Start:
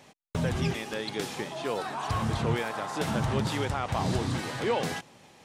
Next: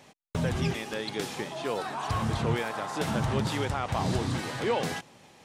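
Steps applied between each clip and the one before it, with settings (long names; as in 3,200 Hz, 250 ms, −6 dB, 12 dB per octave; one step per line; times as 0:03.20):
no processing that can be heard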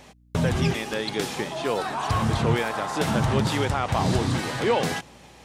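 mains hum 60 Hz, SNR 32 dB
level +5.5 dB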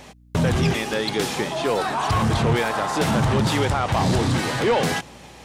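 soft clipping −19 dBFS, distortion −14 dB
level +5.5 dB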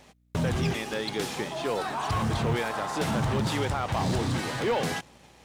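mu-law and A-law mismatch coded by A
level −6.5 dB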